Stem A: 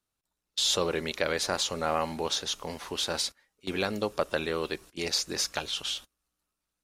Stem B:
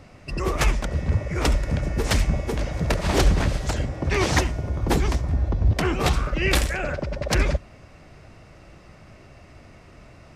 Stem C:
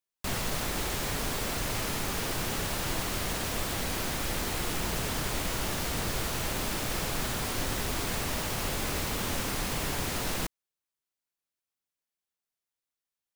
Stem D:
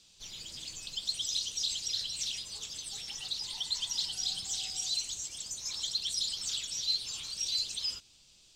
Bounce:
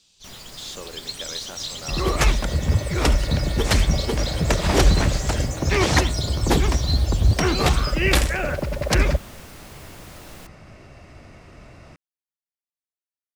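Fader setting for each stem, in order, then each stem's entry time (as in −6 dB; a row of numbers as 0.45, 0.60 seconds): −10.5, +2.5, −11.5, +1.0 decibels; 0.00, 1.60, 0.00, 0.00 seconds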